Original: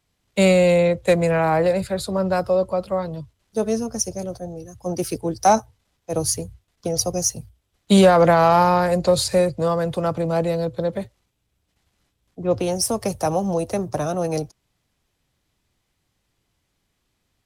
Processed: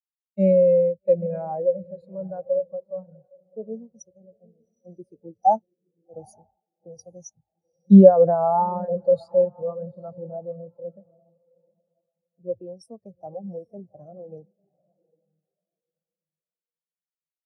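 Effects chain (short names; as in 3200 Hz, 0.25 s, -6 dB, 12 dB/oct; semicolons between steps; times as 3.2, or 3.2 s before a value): diffused feedback echo 0.814 s, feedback 45%, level -10.5 dB; spectral expander 2.5:1; gain +2.5 dB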